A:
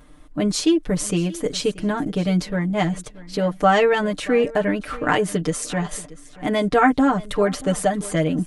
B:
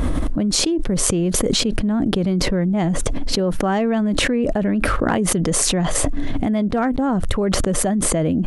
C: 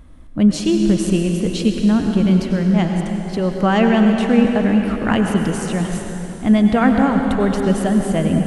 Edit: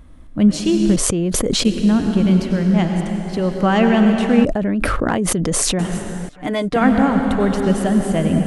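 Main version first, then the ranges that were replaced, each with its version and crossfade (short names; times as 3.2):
C
0.96–1.65 from B
4.45–5.79 from B
6.29–6.76 from A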